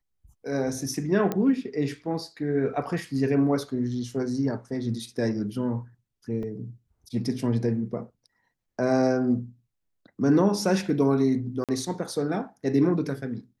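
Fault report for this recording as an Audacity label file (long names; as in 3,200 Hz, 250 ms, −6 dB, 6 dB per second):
1.320000	1.320000	click −14 dBFS
6.430000	6.430000	drop-out 2.4 ms
11.640000	11.690000	drop-out 47 ms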